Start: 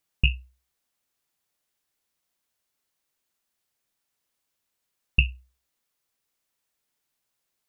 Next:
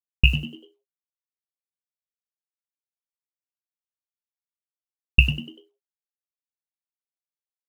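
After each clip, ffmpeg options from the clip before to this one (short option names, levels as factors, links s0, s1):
-filter_complex "[0:a]acrusher=bits=7:mix=0:aa=0.5,asplit=2[s0][s1];[s1]asplit=4[s2][s3][s4][s5];[s2]adelay=97,afreqshift=86,volume=0.266[s6];[s3]adelay=194,afreqshift=172,volume=0.0933[s7];[s4]adelay=291,afreqshift=258,volume=0.0327[s8];[s5]adelay=388,afreqshift=344,volume=0.0114[s9];[s6][s7][s8][s9]amix=inputs=4:normalize=0[s10];[s0][s10]amix=inputs=2:normalize=0,volume=1.78"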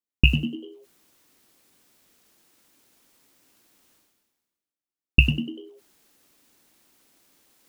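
-af "equalizer=f=280:t=o:w=1.1:g=11.5,areverse,acompressor=mode=upward:threshold=0.02:ratio=2.5,areverse,volume=0.891"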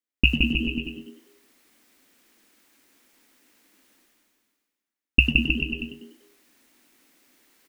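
-filter_complex "[0:a]equalizer=f=125:t=o:w=1:g=-11,equalizer=f=250:t=o:w=1:g=7,equalizer=f=2000:t=o:w=1:g=6,asplit=2[s0][s1];[s1]aecho=0:1:170|314.5|437.3|541.7|630.5:0.631|0.398|0.251|0.158|0.1[s2];[s0][s2]amix=inputs=2:normalize=0,volume=0.75"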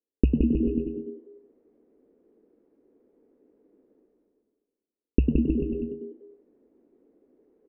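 -af "lowpass=f=440:t=q:w=4.9"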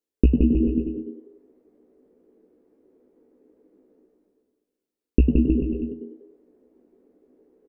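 -filter_complex "[0:a]asplit=2[s0][s1];[s1]adelay=16,volume=0.501[s2];[s0][s2]amix=inputs=2:normalize=0,volume=1.33"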